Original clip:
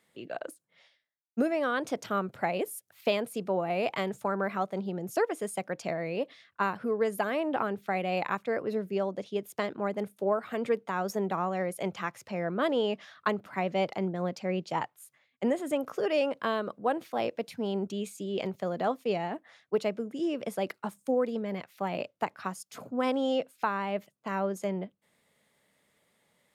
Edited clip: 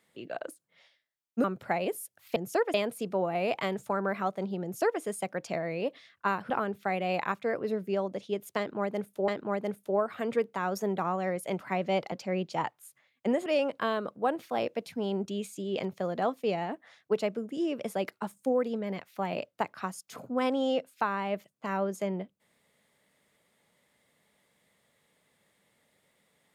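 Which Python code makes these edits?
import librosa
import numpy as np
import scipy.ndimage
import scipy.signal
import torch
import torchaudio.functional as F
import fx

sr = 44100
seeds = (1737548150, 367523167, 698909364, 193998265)

y = fx.edit(x, sr, fx.cut(start_s=1.44, length_s=0.73),
    fx.duplicate(start_s=4.98, length_s=0.38, to_s=3.09),
    fx.cut(start_s=6.85, length_s=0.68),
    fx.repeat(start_s=9.61, length_s=0.7, count=2),
    fx.cut(start_s=11.92, length_s=1.53),
    fx.cut(start_s=13.98, length_s=0.31),
    fx.cut(start_s=15.63, length_s=0.45), tone=tone)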